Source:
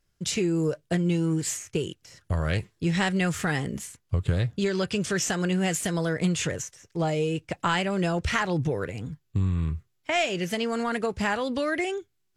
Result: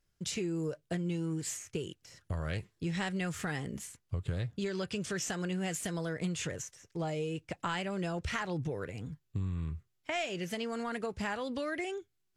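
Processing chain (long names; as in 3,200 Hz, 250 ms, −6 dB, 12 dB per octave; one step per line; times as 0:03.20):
downward compressor 1.5 to 1, threshold −34 dBFS, peak gain reduction 5.5 dB
level −5 dB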